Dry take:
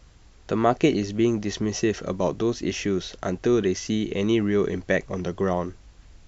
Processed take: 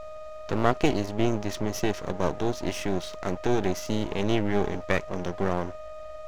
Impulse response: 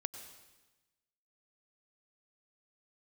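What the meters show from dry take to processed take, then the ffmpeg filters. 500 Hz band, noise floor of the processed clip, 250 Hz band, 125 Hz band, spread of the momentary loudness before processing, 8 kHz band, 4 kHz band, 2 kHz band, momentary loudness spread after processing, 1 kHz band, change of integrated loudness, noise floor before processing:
−3.5 dB, −39 dBFS, −4.5 dB, −1.5 dB, 6 LU, can't be measured, −2.5 dB, −1.5 dB, 8 LU, 0.0 dB, −3.5 dB, −52 dBFS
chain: -af "aeval=exprs='val(0)+0.0224*sin(2*PI*620*n/s)':channel_layout=same,aeval=exprs='max(val(0),0)':channel_layout=same"

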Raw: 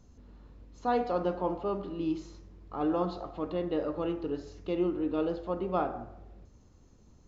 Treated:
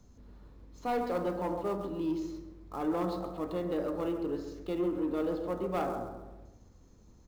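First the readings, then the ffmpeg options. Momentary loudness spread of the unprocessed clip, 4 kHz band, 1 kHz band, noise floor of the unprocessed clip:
8 LU, −1.5 dB, −2.5 dB, −59 dBFS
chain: -filter_complex "[0:a]asplit=2[link_01][link_02];[link_02]adelay=135,lowpass=frequency=1700:poles=1,volume=-8dB,asplit=2[link_03][link_04];[link_04]adelay=135,lowpass=frequency=1700:poles=1,volume=0.47,asplit=2[link_05][link_06];[link_06]adelay=135,lowpass=frequency=1700:poles=1,volume=0.47,asplit=2[link_07][link_08];[link_08]adelay=135,lowpass=frequency=1700:poles=1,volume=0.47,asplit=2[link_09][link_10];[link_10]adelay=135,lowpass=frequency=1700:poles=1,volume=0.47[link_11];[link_01][link_03][link_05][link_07][link_09][link_11]amix=inputs=6:normalize=0,acrossover=split=130|1200[link_12][link_13][link_14];[link_14]acrusher=bits=2:mode=log:mix=0:aa=0.000001[link_15];[link_12][link_13][link_15]amix=inputs=3:normalize=0,equalizer=frequency=2800:width_type=o:width=0.26:gain=-4,asoftclip=type=tanh:threshold=-24dB,bandreject=frequency=74.37:width_type=h:width=4,bandreject=frequency=148.74:width_type=h:width=4,bandreject=frequency=223.11:width_type=h:width=4,bandreject=frequency=297.48:width_type=h:width=4,bandreject=frequency=371.85:width_type=h:width=4,bandreject=frequency=446.22:width_type=h:width=4,bandreject=frequency=520.59:width_type=h:width=4,bandreject=frequency=594.96:width_type=h:width=4,bandreject=frequency=669.33:width_type=h:width=4,bandreject=frequency=743.7:width_type=h:width=4,bandreject=frequency=818.07:width_type=h:width=4,bandreject=frequency=892.44:width_type=h:width=4,bandreject=frequency=966.81:width_type=h:width=4,bandreject=frequency=1041.18:width_type=h:width=4,bandreject=frequency=1115.55:width_type=h:width=4,bandreject=frequency=1189.92:width_type=h:width=4,bandreject=frequency=1264.29:width_type=h:width=4,bandreject=frequency=1338.66:width_type=h:width=4,bandreject=frequency=1413.03:width_type=h:width=4,bandreject=frequency=1487.4:width_type=h:width=4,bandreject=frequency=1561.77:width_type=h:width=4,bandreject=frequency=1636.14:width_type=h:width=4,bandreject=frequency=1710.51:width_type=h:width=4,bandreject=frequency=1784.88:width_type=h:width=4,bandreject=frequency=1859.25:width_type=h:width=4,bandreject=frequency=1933.62:width_type=h:width=4,bandreject=frequency=2007.99:width_type=h:width=4,bandreject=frequency=2082.36:width_type=h:width=4"

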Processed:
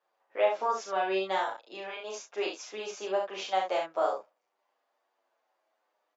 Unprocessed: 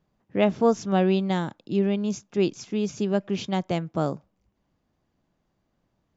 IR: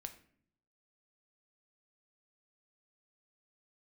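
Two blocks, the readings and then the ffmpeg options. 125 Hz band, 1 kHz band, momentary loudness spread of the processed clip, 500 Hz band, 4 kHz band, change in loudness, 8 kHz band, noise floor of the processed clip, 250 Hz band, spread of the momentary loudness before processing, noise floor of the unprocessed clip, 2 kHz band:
below −30 dB, +1.0 dB, 11 LU, −5.0 dB, −2.0 dB, −6.0 dB, can't be measured, −80 dBFS, −20.0 dB, 7 LU, −75 dBFS, 0.0 dB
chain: -filter_complex "[0:a]highpass=frequency=570:width=0.5412,highpass=frequency=570:width=1.3066,highshelf=frequency=2900:gain=-10,alimiter=limit=-21.5dB:level=0:latency=1:release=150,asplit=2[link_01][link_02];[link_02]aecho=0:1:37|68:0.668|0.531[link_03];[link_01][link_03]amix=inputs=2:normalize=0,asplit=2[link_04][link_05];[link_05]adelay=8.6,afreqshift=-0.57[link_06];[link_04][link_06]amix=inputs=2:normalize=1,volume=5.5dB"

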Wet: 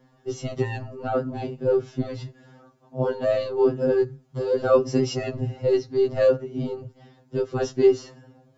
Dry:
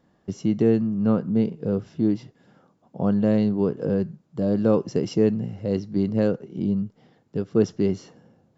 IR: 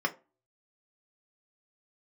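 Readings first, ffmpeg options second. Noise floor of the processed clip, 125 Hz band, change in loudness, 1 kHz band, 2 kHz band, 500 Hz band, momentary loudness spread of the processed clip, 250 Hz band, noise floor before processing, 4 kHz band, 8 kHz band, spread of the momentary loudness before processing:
−60 dBFS, −3.5 dB, −0.5 dB, +5.5 dB, +5.5 dB, +4.0 dB, 12 LU, −8.0 dB, −65 dBFS, +4.5 dB, can't be measured, 8 LU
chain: -filter_complex "[0:a]acrossover=split=250[link_01][link_02];[link_01]asoftclip=type=tanh:threshold=-27.5dB[link_03];[link_03][link_02]amix=inputs=2:normalize=0,afftfilt=real='re*2.45*eq(mod(b,6),0)':imag='im*2.45*eq(mod(b,6),0)':win_size=2048:overlap=0.75,volume=7dB"

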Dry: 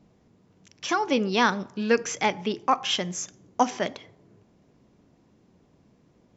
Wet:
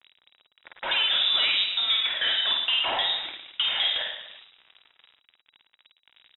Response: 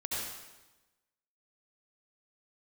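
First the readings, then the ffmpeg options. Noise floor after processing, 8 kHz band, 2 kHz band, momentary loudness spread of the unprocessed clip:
−73 dBFS, can't be measured, +1.5 dB, 9 LU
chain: -filter_complex "[0:a]bandreject=frequency=2700:width=17,asplit=2[link_01][link_02];[link_02]highpass=frequency=720:poles=1,volume=32dB,asoftclip=type=tanh:threshold=-8dB[link_03];[link_01][link_03]amix=inputs=2:normalize=0,lowpass=frequency=1900:poles=1,volume=-6dB,aeval=exprs='val(0)*gte(abs(val(0)),0.0188)':channel_layout=same,aphaser=in_gain=1:out_gain=1:delay=3.2:decay=0.21:speed=0.5:type=sinusoidal,acompressor=threshold=-17dB:ratio=6,aecho=1:1:50|107.5|173.6|249.7|337.1:0.631|0.398|0.251|0.158|0.1,lowpass=frequency=3300:width_type=q:width=0.5098,lowpass=frequency=3300:width_type=q:width=0.6013,lowpass=frequency=3300:width_type=q:width=0.9,lowpass=frequency=3300:width_type=q:width=2.563,afreqshift=-3900,volume=-6.5dB"

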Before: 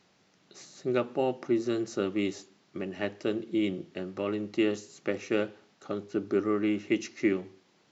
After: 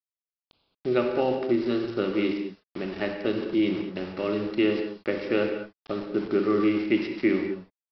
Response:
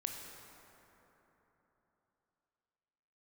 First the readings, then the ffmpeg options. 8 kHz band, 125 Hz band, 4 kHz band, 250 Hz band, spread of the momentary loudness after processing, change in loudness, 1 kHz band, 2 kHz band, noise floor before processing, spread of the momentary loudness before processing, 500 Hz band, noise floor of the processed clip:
can't be measured, +3.5 dB, +4.5 dB, +4.5 dB, 11 LU, +4.0 dB, +4.5 dB, +4.5 dB, −66 dBFS, 10 LU, +4.5 dB, below −85 dBFS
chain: -filter_complex "[0:a]bandreject=frequency=50:width_type=h:width=6,bandreject=frequency=100:width_type=h:width=6,bandreject=frequency=150:width_type=h:width=6,bandreject=frequency=200:width_type=h:width=6,aresample=11025,aeval=exprs='val(0)*gte(abs(val(0)),0.00944)':channel_layout=same,aresample=44100[link_01];[1:a]atrim=start_sample=2205,afade=type=out:start_time=0.28:duration=0.01,atrim=end_sample=12789[link_02];[link_01][link_02]afir=irnorm=-1:irlink=0,volume=5dB"

